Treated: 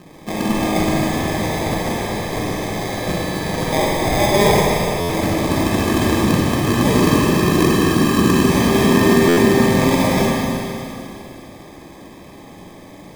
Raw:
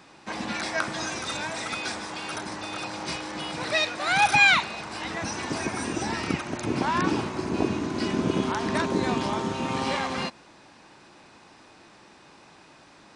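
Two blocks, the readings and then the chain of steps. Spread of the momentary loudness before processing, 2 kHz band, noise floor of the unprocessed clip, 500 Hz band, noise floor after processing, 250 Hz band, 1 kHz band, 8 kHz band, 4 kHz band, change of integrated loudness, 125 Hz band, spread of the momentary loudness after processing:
11 LU, +3.0 dB, −53 dBFS, +14.0 dB, −40 dBFS, +14.0 dB, +7.0 dB, +10.0 dB, +6.0 dB, +9.5 dB, +16.0 dB, 10 LU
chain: low-shelf EQ 470 Hz +10 dB
in parallel at −2.5 dB: compressor whose output falls as the input rises −24 dBFS
on the sum: decimation without filtering 31×
four-comb reverb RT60 2.9 s, DRR −3 dB
buffer that repeats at 0:05.00/0:09.28, samples 512, times 7
level −2 dB

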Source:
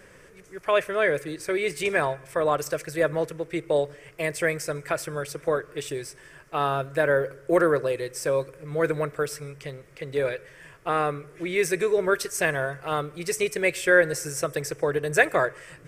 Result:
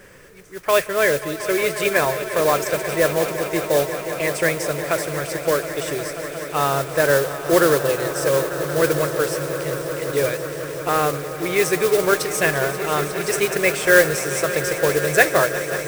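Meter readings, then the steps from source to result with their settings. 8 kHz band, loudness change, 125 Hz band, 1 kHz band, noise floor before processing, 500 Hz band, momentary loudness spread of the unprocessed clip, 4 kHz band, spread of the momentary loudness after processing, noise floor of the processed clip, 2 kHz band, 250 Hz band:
+9.0 dB, +5.5 dB, +6.0 dB, +5.5 dB, −51 dBFS, +5.5 dB, 11 LU, +9.0 dB, 9 LU, −32 dBFS, +5.5 dB, +6.0 dB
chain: echo that builds up and dies away 179 ms, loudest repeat 5, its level −14.5 dB
noise that follows the level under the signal 12 dB
level +4.5 dB

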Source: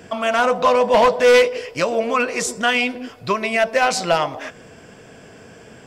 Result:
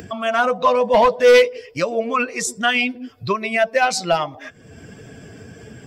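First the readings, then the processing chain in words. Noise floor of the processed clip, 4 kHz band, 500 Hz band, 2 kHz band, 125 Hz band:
−46 dBFS, −0.5 dB, 0.0 dB, −0.5 dB, +1.0 dB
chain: spectral dynamics exaggerated over time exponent 1.5
upward compression, threshold −27 dBFS
level +2 dB

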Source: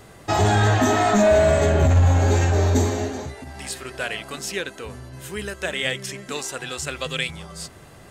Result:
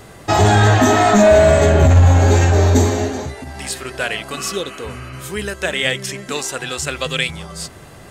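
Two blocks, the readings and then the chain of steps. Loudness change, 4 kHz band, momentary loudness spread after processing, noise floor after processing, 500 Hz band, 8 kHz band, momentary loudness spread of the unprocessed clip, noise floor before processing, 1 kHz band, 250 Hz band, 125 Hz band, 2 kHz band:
+6.0 dB, +6.0 dB, 19 LU, −40 dBFS, +6.0 dB, +6.0 dB, 19 LU, −46 dBFS, +6.0 dB, +6.0 dB, +6.0 dB, +6.0 dB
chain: healed spectral selection 0:04.40–0:05.28, 1,100–3,100 Hz both
level +6 dB

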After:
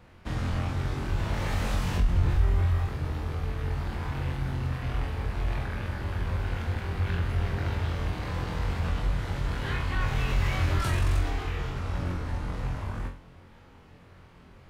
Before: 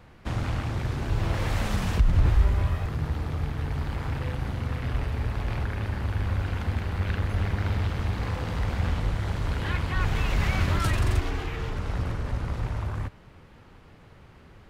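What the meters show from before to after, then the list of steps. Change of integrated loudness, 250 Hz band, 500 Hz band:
−2.0 dB, −2.5 dB, −1.5 dB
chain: flutter between parallel walls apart 3.9 metres, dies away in 0.36 s
in parallel at −2 dB: brickwall limiter −16 dBFS, peak gain reduction 9.5 dB
on the sum: level −8.5 dB

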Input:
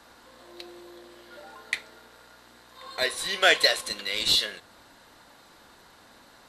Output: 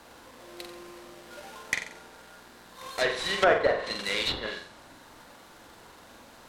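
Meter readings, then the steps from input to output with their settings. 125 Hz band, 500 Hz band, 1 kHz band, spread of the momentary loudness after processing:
+5.5 dB, +3.5 dB, +2.0 dB, 22 LU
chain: each half-wave held at its own peak
flutter between parallel walls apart 7.7 metres, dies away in 0.45 s
treble cut that deepens with the level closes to 1,200 Hz, closed at −14.5 dBFS
level −3 dB

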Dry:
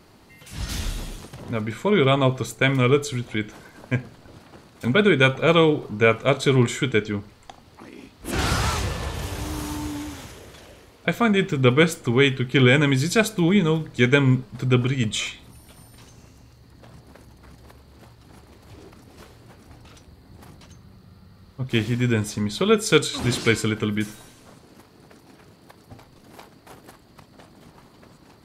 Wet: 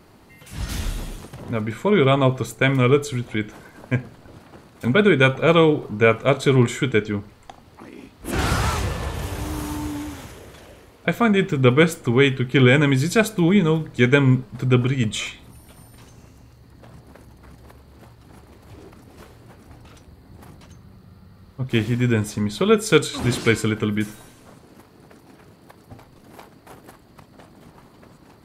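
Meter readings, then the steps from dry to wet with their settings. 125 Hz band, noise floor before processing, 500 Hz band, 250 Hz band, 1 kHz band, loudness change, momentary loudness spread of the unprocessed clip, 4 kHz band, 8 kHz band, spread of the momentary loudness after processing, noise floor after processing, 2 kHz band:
+2.0 dB, −53 dBFS, +2.0 dB, +2.0 dB, +1.5 dB, +1.5 dB, 14 LU, −1.5 dB, −1.0 dB, 14 LU, −51 dBFS, +0.5 dB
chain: parametric band 4,800 Hz −4.5 dB 1.7 octaves
level +2 dB

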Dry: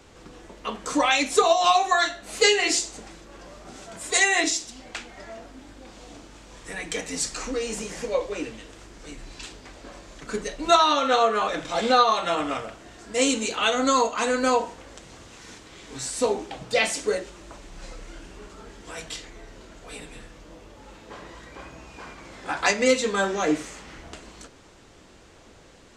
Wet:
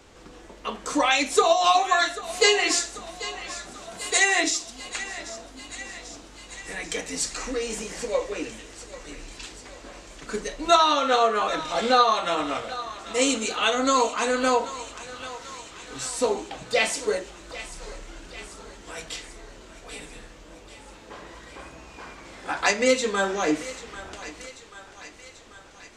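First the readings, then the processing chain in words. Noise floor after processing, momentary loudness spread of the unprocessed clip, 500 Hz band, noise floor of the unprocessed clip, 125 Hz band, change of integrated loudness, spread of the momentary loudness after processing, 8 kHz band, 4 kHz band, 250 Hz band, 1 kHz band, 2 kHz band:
−47 dBFS, 23 LU, −0.5 dB, −51 dBFS, −2.5 dB, −0.5 dB, 23 LU, +0.5 dB, +0.5 dB, −1.0 dB, 0.0 dB, 0.0 dB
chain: parametric band 130 Hz −3.5 dB 1.6 octaves
feedback echo with a high-pass in the loop 789 ms, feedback 68%, high-pass 630 Hz, level −14 dB

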